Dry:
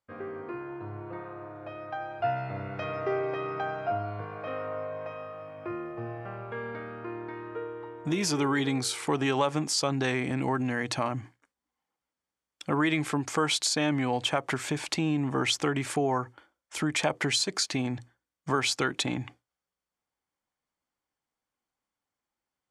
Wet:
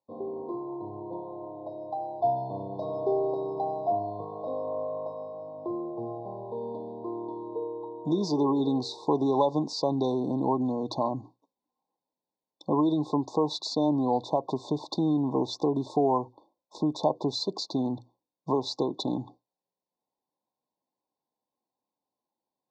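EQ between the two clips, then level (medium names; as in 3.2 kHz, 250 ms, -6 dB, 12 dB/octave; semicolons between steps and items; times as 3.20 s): band-pass 190–6700 Hz; brick-wall FIR band-stop 1.1–3.5 kHz; distance through air 210 m; +4.0 dB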